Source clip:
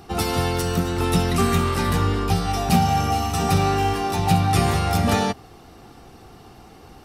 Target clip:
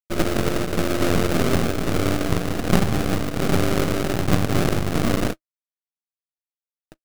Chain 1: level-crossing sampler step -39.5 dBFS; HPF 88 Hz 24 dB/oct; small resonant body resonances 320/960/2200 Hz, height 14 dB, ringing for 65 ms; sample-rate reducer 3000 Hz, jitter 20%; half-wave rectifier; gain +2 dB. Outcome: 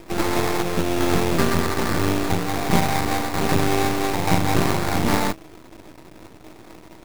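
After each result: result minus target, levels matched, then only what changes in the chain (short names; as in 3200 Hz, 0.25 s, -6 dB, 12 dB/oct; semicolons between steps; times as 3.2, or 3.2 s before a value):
level-crossing sampler: distortion -13 dB; sample-rate reducer: distortion -10 dB
change: level-crossing sampler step -28 dBFS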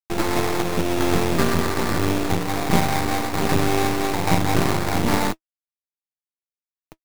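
sample-rate reducer: distortion -10 dB
change: sample-rate reducer 940 Hz, jitter 20%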